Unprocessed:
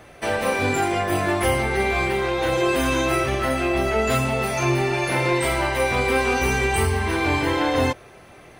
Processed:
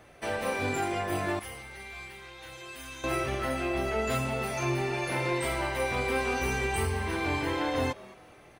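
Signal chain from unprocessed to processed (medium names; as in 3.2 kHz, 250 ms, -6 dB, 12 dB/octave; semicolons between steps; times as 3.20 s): 1.39–3.04 s: amplifier tone stack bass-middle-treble 5-5-5; frequency-shifting echo 214 ms, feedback 36%, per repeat +110 Hz, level -21 dB; trim -8.5 dB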